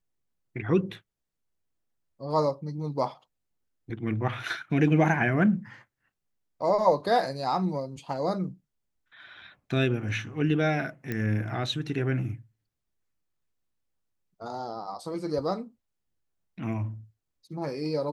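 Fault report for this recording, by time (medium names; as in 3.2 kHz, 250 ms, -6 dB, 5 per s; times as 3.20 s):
11.12 s: pop -18 dBFS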